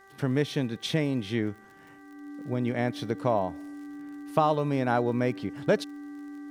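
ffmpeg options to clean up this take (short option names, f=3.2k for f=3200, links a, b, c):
-af "adeclick=t=4,bandreject=f=389.8:t=h:w=4,bandreject=f=779.6:t=h:w=4,bandreject=f=1.1694k:t=h:w=4,bandreject=f=1.5592k:t=h:w=4,bandreject=f=1.949k:t=h:w=4,bandreject=f=290:w=30"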